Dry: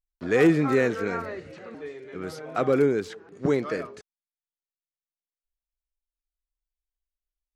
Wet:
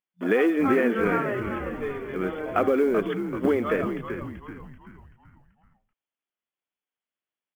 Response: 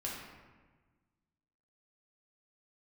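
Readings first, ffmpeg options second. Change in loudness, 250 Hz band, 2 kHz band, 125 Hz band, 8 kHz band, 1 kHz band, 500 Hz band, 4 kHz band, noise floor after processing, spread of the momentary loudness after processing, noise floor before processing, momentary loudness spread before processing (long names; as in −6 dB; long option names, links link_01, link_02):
−0.5 dB, +1.5 dB, +2.0 dB, −3.0 dB, can't be measured, +4.0 dB, +1.0 dB, −1.5 dB, below −85 dBFS, 13 LU, below −85 dBFS, 20 LU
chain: -filter_complex "[0:a]acontrast=59,afftfilt=real='re*between(b*sr/4096,180,3500)':imag='im*between(b*sr/4096,180,3500)':win_size=4096:overlap=0.75,acompressor=threshold=-18dB:ratio=10,acrusher=bits=9:mode=log:mix=0:aa=0.000001,asplit=2[link_01][link_02];[link_02]asplit=5[link_03][link_04][link_05][link_06][link_07];[link_03]adelay=384,afreqshift=-87,volume=-8dB[link_08];[link_04]adelay=768,afreqshift=-174,volume=-15.1dB[link_09];[link_05]adelay=1152,afreqshift=-261,volume=-22.3dB[link_10];[link_06]adelay=1536,afreqshift=-348,volume=-29.4dB[link_11];[link_07]adelay=1920,afreqshift=-435,volume=-36.5dB[link_12];[link_08][link_09][link_10][link_11][link_12]amix=inputs=5:normalize=0[link_13];[link_01][link_13]amix=inputs=2:normalize=0"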